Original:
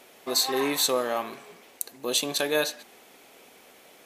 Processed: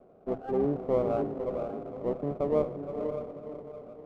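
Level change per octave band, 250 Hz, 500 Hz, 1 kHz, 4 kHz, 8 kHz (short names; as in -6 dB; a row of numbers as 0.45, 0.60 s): +1.5 dB, +1.0 dB, -5.0 dB, under -35 dB, under -40 dB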